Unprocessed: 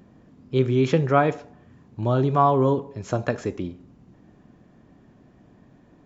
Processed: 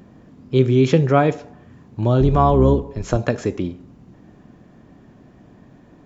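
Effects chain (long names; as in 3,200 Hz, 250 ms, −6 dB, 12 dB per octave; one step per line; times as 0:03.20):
0:02.20–0:03.17: sub-octave generator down 2 octaves, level −3 dB
dynamic equaliser 1,200 Hz, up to −6 dB, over −33 dBFS, Q 0.72
level +6 dB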